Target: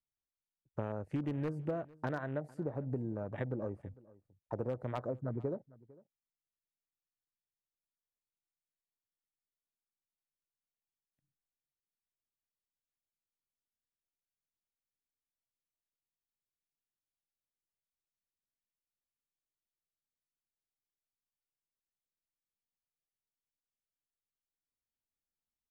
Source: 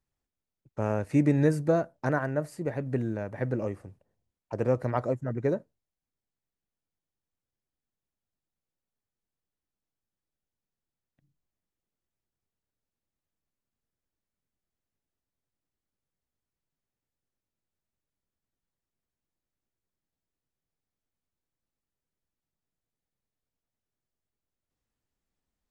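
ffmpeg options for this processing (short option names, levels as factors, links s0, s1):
-af "afwtdn=0.00891,aeval=exprs='0.188*(abs(mod(val(0)/0.188+3,4)-2)-1)':c=same,acompressor=threshold=0.02:ratio=6,aecho=1:1:452:0.075"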